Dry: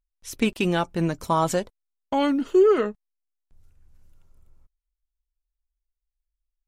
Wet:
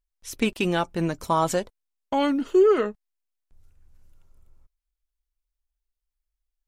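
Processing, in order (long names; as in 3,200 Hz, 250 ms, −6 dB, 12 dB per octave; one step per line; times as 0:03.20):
parametric band 150 Hz −2.5 dB 1.6 octaves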